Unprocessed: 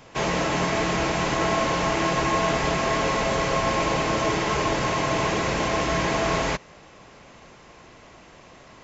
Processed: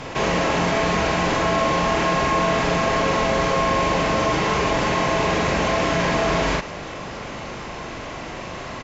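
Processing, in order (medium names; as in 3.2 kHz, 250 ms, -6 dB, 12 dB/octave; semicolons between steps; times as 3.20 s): distance through air 50 m; doubling 41 ms -2 dB; level flattener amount 50%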